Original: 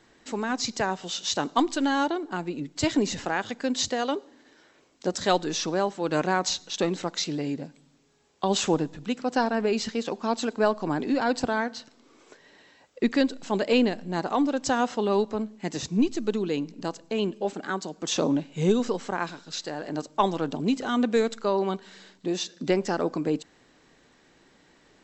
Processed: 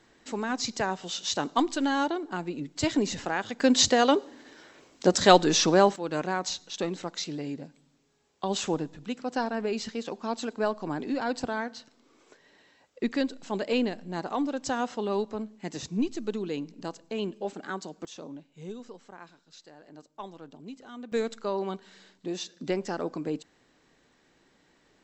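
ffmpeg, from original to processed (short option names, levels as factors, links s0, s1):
-af "asetnsamples=n=441:p=0,asendcmd='3.6 volume volume 6dB;5.96 volume volume -5dB;18.05 volume volume -18dB;21.12 volume volume -5.5dB',volume=0.794"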